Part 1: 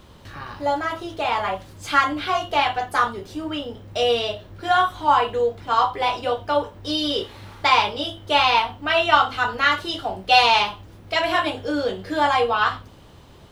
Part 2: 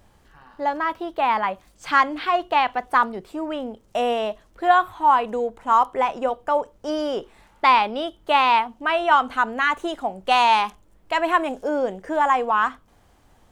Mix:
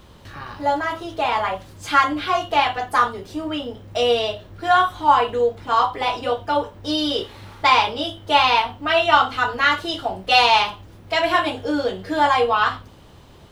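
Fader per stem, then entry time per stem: +0.5, -6.5 dB; 0.00, 0.00 s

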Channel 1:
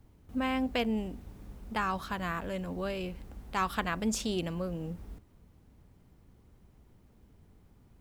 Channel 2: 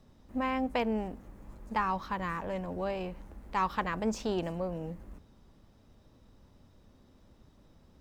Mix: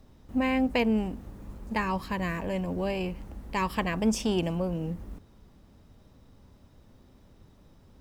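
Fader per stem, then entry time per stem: -0.5, +2.0 dB; 0.00, 0.00 s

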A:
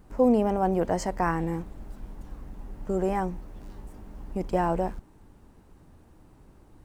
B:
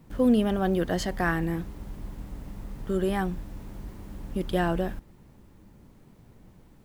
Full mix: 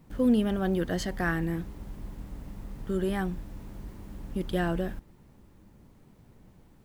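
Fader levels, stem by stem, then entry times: -16.5, -2.5 dB; 0.00, 0.00 s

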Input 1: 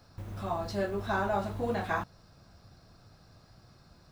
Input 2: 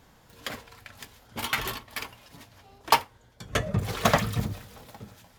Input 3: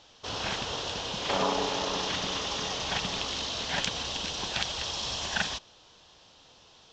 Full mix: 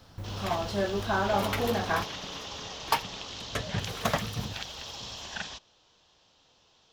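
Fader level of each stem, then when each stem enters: +2.5, -6.5, -7.5 dB; 0.00, 0.00, 0.00 s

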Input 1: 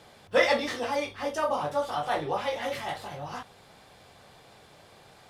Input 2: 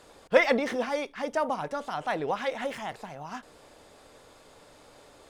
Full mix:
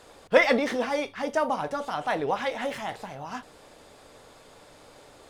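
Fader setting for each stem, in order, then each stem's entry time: -8.5, +2.0 dB; 0.00, 0.00 s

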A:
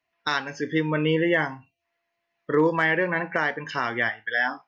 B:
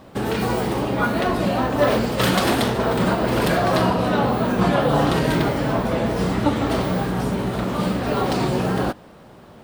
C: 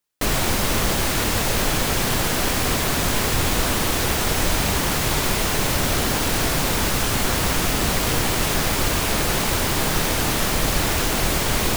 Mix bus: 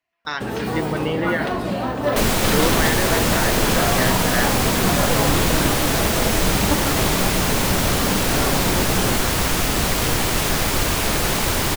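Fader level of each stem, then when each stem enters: -2.0, -3.0, +1.0 dB; 0.00, 0.25, 1.95 s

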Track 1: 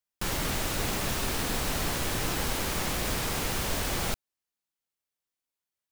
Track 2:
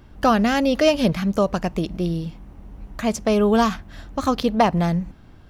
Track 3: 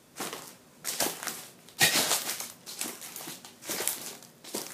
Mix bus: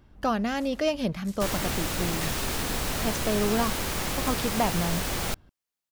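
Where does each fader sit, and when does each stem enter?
+0.5, -9.0, -16.5 dB; 1.20, 0.00, 0.40 s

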